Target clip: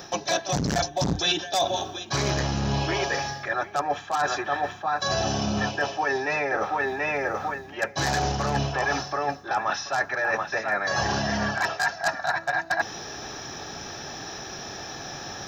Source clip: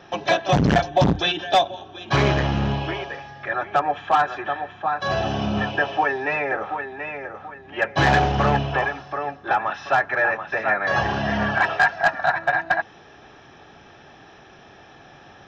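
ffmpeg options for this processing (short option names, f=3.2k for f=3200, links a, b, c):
-af "areverse,acompressor=threshold=-31dB:ratio=12,areverse,aexciter=amount=7.6:drive=4.5:freq=4.4k,volume=8.5dB"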